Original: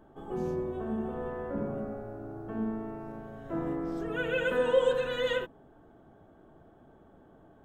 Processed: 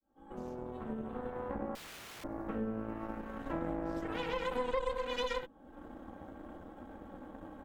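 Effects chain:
fade in at the beginning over 2.37 s
comb filter 3.7 ms, depth 97%
downward compressor 3 to 1, threshold −47 dBFS, peak gain reduction 23.5 dB
0:01.75–0:02.24: wrap-around overflow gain 50 dB
harmonic generator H 8 −13 dB, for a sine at −25 dBFS
level +5 dB

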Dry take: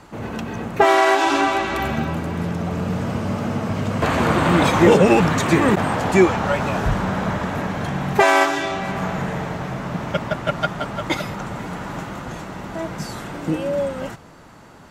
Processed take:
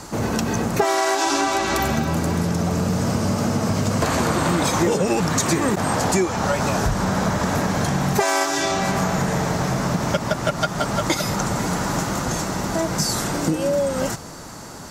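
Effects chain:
high shelf with overshoot 4,000 Hz +9 dB, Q 1.5
downward compressor 6 to 1, threshold −25 dBFS, peak gain reduction 15.5 dB
level +7.5 dB

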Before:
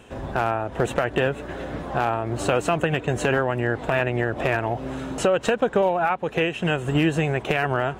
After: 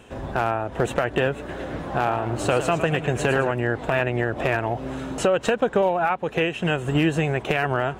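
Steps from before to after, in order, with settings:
0:01.34–0:03.51: feedback echo with a swinging delay time 110 ms, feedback 45%, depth 135 cents, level −10 dB

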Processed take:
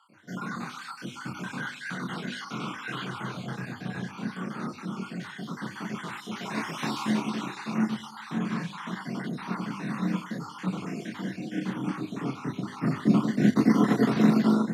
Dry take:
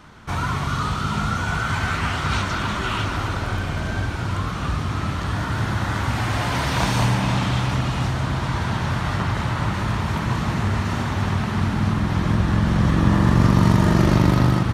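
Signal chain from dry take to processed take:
time-frequency cells dropped at random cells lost 56%
hum removal 52.26 Hz, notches 23
multi-voice chorus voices 6, 0.9 Hz, delay 28 ms, depth 5 ms
frequency shifter +93 Hz
feedback echo with a low-pass in the loop 100 ms, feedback 54%, low-pass 2,400 Hz, level −19 dB
expander for the loud parts 1.5 to 1, over −26 dBFS

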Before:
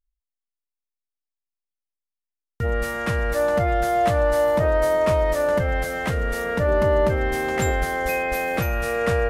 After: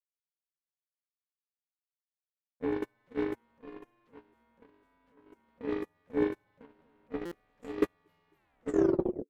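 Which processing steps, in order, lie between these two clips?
turntable brake at the end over 0.96 s
graphic EQ with 15 bands 1,600 Hz +6 dB, 4,000 Hz −9 dB, 10,000 Hz −4 dB
bit-depth reduction 10 bits, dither none
harmonic generator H 4 −8 dB, 5 −7 dB, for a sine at −9 dBFS
bass and treble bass +12 dB, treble −1 dB
noise gate −1 dBFS, range −55 dB
ring modulation 360 Hz
buffer that repeats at 0:07.25, samples 256, times 10

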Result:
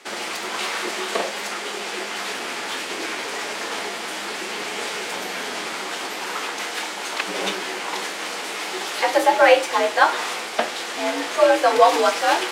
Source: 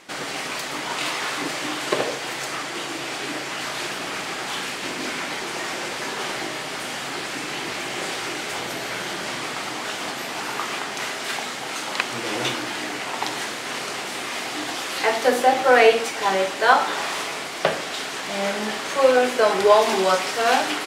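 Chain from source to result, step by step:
frequency shifter +69 Hz
phase-vocoder stretch with locked phases 0.6×
level +2 dB

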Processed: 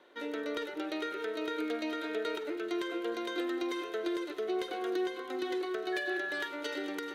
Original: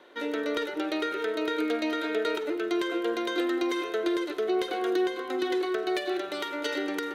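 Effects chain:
delay with a high-pass on its return 436 ms, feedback 53%, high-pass 2,000 Hz, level −12 dB
0:05.92–0:06.45: steady tone 1,700 Hz −28 dBFS
level −6.5 dB

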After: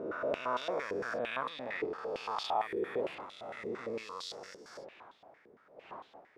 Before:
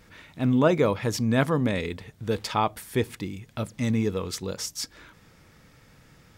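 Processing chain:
peak hold with a rise ahead of every peak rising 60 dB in 2.73 s
wind on the microphone 530 Hz −32 dBFS
band-pass on a step sequencer 8.8 Hz 400–3,600 Hz
level −5 dB

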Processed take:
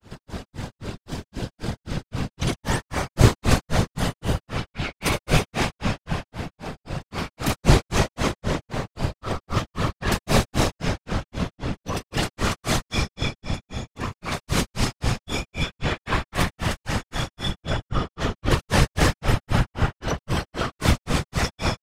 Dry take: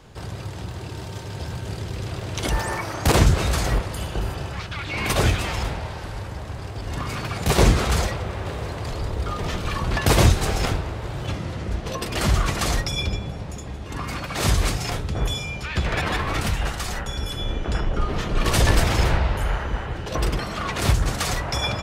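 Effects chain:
comb and all-pass reverb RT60 3.2 s, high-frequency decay 0.9×, pre-delay 40 ms, DRR −1 dB
random phases in short frames
granular cloud 195 ms, grains 3.8 per second, pitch spread up and down by 0 semitones
level +1.5 dB

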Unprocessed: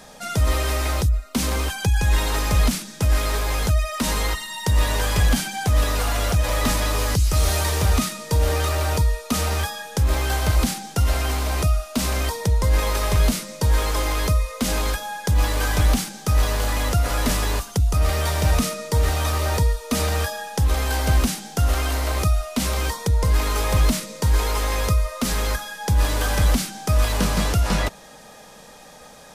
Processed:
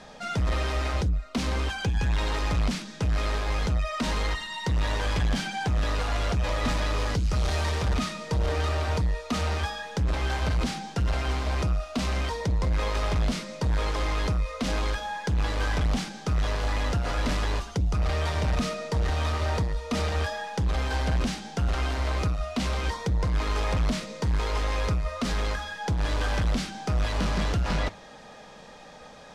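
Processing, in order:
low-pass filter 4,600 Hz 12 dB per octave
soft clipping −19.5 dBFS, distortion −12 dB
flanger 1.9 Hz, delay 4.3 ms, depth 5.3 ms, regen −89%
level +3 dB

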